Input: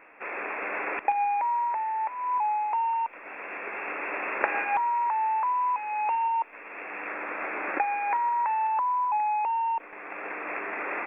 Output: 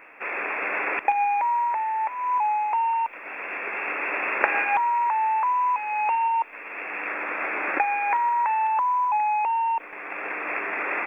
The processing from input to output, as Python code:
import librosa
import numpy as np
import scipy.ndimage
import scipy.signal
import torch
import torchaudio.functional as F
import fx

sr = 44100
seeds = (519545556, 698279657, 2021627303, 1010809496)

y = fx.high_shelf(x, sr, hz=2200.0, db=8.5)
y = y * 10.0 ** (2.0 / 20.0)